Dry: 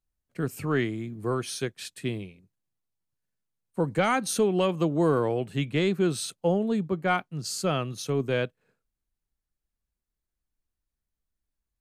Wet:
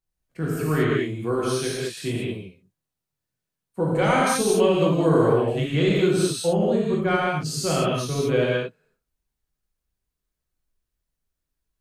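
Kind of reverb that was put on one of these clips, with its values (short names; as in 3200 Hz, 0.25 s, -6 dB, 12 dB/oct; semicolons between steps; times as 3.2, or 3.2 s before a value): non-linear reverb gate 0.25 s flat, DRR -6 dB; gain -2 dB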